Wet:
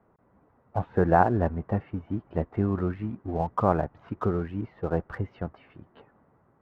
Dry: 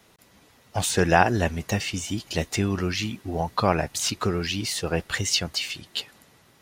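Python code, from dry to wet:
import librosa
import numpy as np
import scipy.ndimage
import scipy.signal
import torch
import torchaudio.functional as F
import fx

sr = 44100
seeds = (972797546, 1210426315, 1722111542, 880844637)

p1 = scipy.signal.sosfilt(scipy.signal.butter(4, 1300.0, 'lowpass', fs=sr, output='sos'), x)
p2 = np.sign(p1) * np.maximum(np.abs(p1) - 10.0 ** (-39.0 / 20.0), 0.0)
p3 = p1 + (p2 * librosa.db_to_amplitude(-6.5))
y = p3 * librosa.db_to_amplitude(-4.0)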